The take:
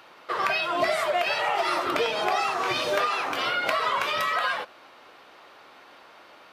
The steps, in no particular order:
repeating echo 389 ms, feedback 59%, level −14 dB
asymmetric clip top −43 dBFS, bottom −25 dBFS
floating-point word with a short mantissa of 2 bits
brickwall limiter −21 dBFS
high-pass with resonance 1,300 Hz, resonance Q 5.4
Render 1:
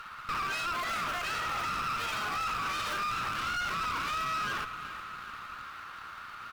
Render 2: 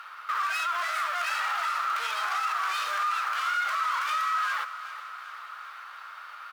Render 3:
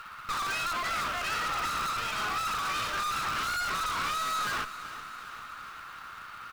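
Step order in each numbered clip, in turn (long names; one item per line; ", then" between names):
floating-point word with a short mantissa, then high-pass with resonance, then brickwall limiter, then repeating echo, then asymmetric clip
floating-point word with a short mantissa, then asymmetric clip, then high-pass with resonance, then brickwall limiter, then repeating echo
brickwall limiter, then high-pass with resonance, then asymmetric clip, then floating-point word with a short mantissa, then repeating echo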